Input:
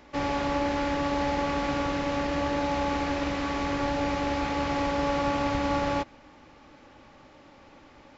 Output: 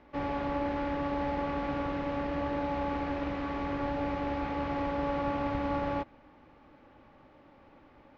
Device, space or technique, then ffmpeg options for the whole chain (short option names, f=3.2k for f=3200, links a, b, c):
phone in a pocket: -af "lowpass=3.8k,highshelf=f=2.4k:g=-8.5,volume=-4dB"